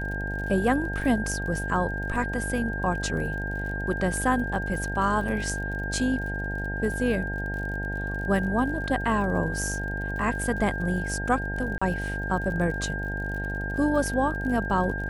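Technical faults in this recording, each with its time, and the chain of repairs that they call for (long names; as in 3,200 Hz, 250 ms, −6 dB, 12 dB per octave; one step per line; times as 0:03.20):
mains buzz 50 Hz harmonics 18 −32 dBFS
surface crackle 54 per second −36 dBFS
whistle 1,600 Hz −32 dBFS
0:11.78–0:11.81: drop-out 35 ms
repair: click removal
hum removal 50 Hz, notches 18
notch filter 1,600 Hz, Q 30
repair the gap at 0:11.78, 35 ms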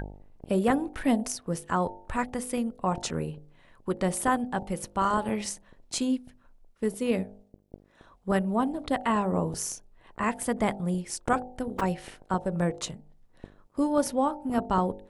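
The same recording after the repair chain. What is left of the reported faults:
none of them is left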